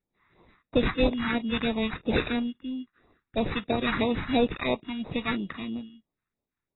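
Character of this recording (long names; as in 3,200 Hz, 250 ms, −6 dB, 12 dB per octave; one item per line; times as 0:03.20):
aliases and images of a low sample rate 3,100 Hz, jitter 0%
phaser sweep stages 2, 3 Hz, lowest notch 500–1,600 Hz
AAC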